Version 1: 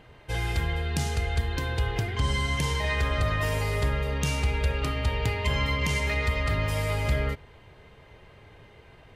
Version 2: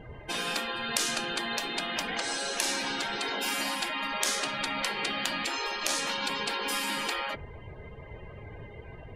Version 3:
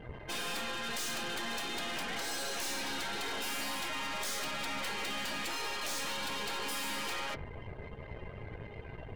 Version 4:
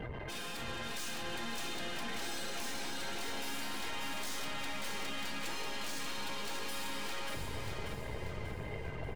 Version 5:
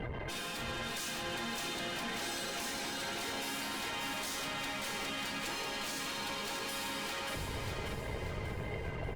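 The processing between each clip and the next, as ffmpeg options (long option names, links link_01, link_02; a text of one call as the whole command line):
ffmpeg -i in.wav -af "afftfilt=real='re*lt(hypot(re,im),0.0562)':imag='im*lt(hypot(re,im),0.0562)':win_size=1024:overlap=0.75,afftdn=noise_reduction=20:noise_floor=-53,volume=8dB" out.wav
ffmpeg -i in.wav -af "aeval=exprs='(tanh(89.1*val(0)+0.75)-tanh(0.75))/89.1':channel_layout=same,volume=3.5dB" out.wav
ffmpeg -i in.wav -filter_complex "[0:a]acrossover=split=320[link_01][link_02];[link_02]acompressor=threshold=-42dB:ratio=2[link_03];[link_01][link_03]amix=inputs=2:normalize=0,alimiter=level_in=15.5dB:limit=-24dB:level=0:latency=1:release=108,volume=-15.5dB,asplit=2[link_04][link_05];[link_05]aecho=0:1:587|1174|1761|2348|2935:0.596|0.262|0.115|0.0507|0.0223[link_06];[link_04][link_06]amix=inputs=2:normalize=0,volume=7dB" out.wav
ffmpeg -i in.wav -af "volume=2.5dB" -ar 48000 -c:a libopus -b:a 64k out.opus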